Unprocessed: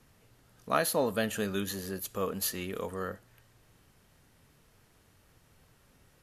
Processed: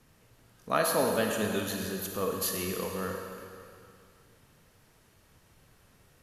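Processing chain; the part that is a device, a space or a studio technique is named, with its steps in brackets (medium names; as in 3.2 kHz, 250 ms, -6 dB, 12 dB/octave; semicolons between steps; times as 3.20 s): stairwell (reverberation RT60 2.5 s, pre-delay 33 ms, DRR 2 dB)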